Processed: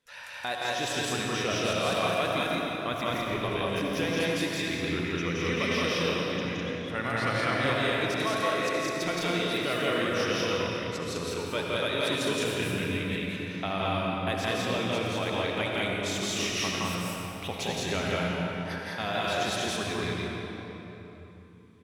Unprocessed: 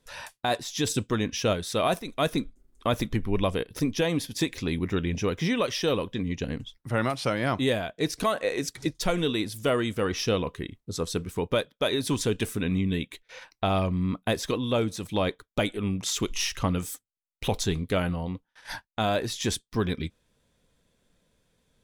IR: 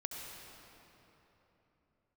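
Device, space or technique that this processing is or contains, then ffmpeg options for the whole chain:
stadium PA: -filter_complex "[0:a]highpass=frequency=140:poles=1,equalizer=frequency=2100:width_type=o:width=1.8:gain=8,aecho=1:1:169.1|204.1:0.891|0.891[link_01];[1:a]atrim=start_sample=2205[link_02];[link_01][link_02]afir=irnorm=-1:irlink=0,volume=-6.5dB"

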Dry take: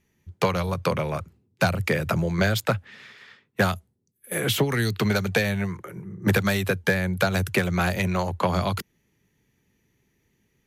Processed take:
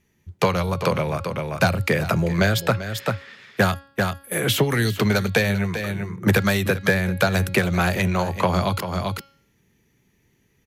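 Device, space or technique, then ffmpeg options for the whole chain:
ducked delay: -filter_complex "[0:a]bandreject=frequency=276.2:width_type=h:width=4,bandreject=frequency=552.4:width_type=h:width=4,bandreject=frequency=828.6:width_type=h:width=4,bandreject=frequency=1104.8:width_type=h:width=4,bandreject=frequency=1381:width_type=h:width=4,bandreject=frequency=1657.2:width_type=h:width=4,bandreject=frequency=1933.4:width_type=h:width=4,bandreject=frequency=2209.6:width_type=h:width=4,bandreject=frequency=2485.8:width_type=h:width=4,bandreject=frequency=2762:width_type=h:width=4,bandreject=frequency=3038.2:width_type=h:width=4,bandreject=frequency=3314.4:width_type=h:width=4,bandreject=frequency=3590.6:width_type=h:width=4,bandreject=frequency=3866.8:width_type=h:width=4,bandreject=frequency=4143:width_type=h:width=4,bandreject=frequency=4419.2:width_type=h:width=4,bandreject=frequency=4695.4:width_type=h:width=4,bandreject=frequency=4971.6:width_type=h:width=4,bandreject=frequency=5247.8:width_type=h:width=4,asplit=3[link_01][link_02][link_03];[link_02]adelay=391,volume=-3.5dB[link_04];[link_03]apad=whole_len=487503[link_05];[link_04][link_05]sidechaincompress=threshold=-34dB:ratio=12:attack=36:release=257[link_06];[link_01][link_06]amix=inputs=2:normalize=0,volume=3dB"

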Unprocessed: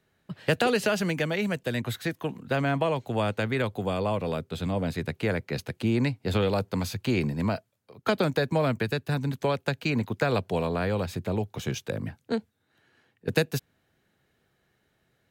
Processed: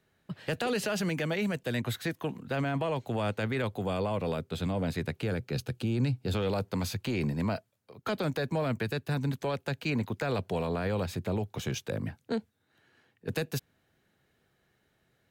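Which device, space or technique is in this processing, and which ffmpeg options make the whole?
soft clipper into limiter: -filter_complex "[0:a]asoftclip=type=tanh:threshold=-13.5dB,alimiter=limit=-22dB:level=0:latency=1:release=16,asettb=1/sr,asplit=3[link_01][link_02][link_03];[link_01]atrim=end=5.224[link_04];[link_02]atrim=start=5.22:end=6.35,asetpts=PTS-STARTPTS,afade=type=in:duration=0.004:curve=qsin,afade=type=out:start_time=1.126:duration=0.004:curve=qsin,equalizer=frequency=125:width_type=o:width=0.33:gain=6,equalizer=frequency=630:width_type=o:width=0.33:gain=-5,equalizer=frequency=1000:width_type=o:width=0.33:gain=-7,equalizer=frequency=2000:width_type=o:width=0.33:gain=-9[link_05];[link_03]atrim=start=6.346[link_06];[link_04][link_05]acrossfade=duration=0.004:curve1=hsin:curve2=qsin[link_07];[link_07][link_06]acrossfade=duration=0.004:curve1=qsin:curve2=hsin,volume=-1dB"

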